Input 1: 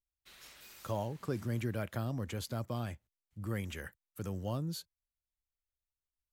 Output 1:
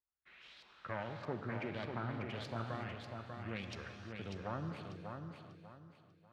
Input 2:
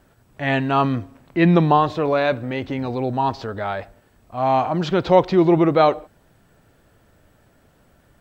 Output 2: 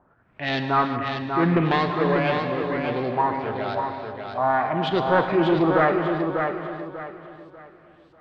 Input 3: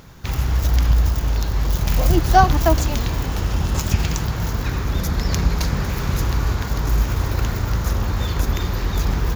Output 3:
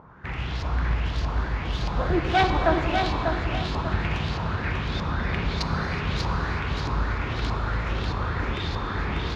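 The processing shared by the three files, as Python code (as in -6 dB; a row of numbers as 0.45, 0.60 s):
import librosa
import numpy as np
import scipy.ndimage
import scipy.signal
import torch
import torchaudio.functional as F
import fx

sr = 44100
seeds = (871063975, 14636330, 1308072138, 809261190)

y = fx.self_delay(x, sr, depth_ms=0.29)
y = fx.highpass(y, sr, hz=85.0, slope=6)
y = fx.dynamic_eq(y, sr, hz=420.0, q=1.8, threshold_db=-32.0, ratio=4.0, max_db=4)
y = 10.0 ** (-8.5 / 20.0) * np.tanh(y / 10.0 ** (-8.5 / 20.0))
y = fx.filter_lfo_lowpass(y, sr, shape='saw_up', hz=1.6, low_hz=960.0, high_hz=4600.0, q=2.9)
y = fx.echo_feedback(y, sr, ms=593, feedback_pct=31, wet_db=-5.5)
y = fx.rev_gated(y, sr, seeds[0], gate_ms=400, shape='flat', drr_db=6.0)
y = y * librosa.db_to_amplitude(-5.5)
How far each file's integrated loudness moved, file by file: -4.5, -3.5, -6.0 LU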